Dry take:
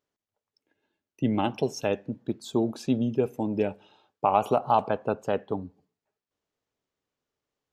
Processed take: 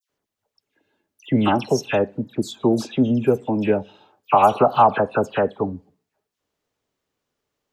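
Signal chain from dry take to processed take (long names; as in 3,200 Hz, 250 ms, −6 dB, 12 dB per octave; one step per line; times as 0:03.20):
dynamic equaliser 1,500 Hz, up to +5 dB, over −38 dBFS, Q 1.4
all-pass dispersion lows, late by 99 ms, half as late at 2,200 Hz
level +7 dB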